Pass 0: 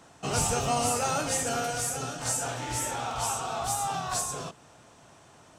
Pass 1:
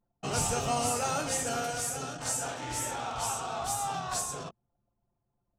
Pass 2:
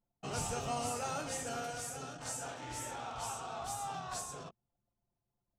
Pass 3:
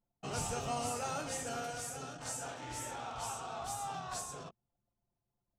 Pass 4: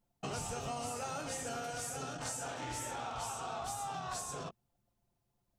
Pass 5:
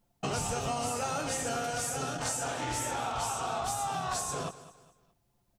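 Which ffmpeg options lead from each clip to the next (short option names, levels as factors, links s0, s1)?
-af "bandreject=f=60:t=h:w=6,bandreject=f=120:t=h:w=6,anlmdn=0.631,volume=0.75"
-af "highshelf=f=6800:g=-4.5,volume=0.447"
-af anull
-af "acompressor=threshold=0.00708:ratio=6,volume=2"
-af "aecho=1:1:208|416|624:0.158|0.0571|0.0205,volume=2.24"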